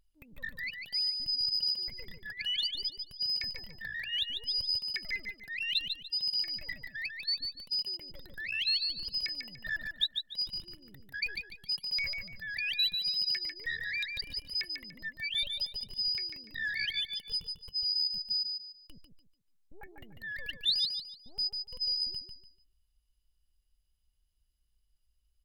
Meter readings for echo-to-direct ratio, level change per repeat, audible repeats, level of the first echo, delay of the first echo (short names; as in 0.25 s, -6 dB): -5.0 dB, -10.5 dB, 3, -5.5 dB, 0.146 s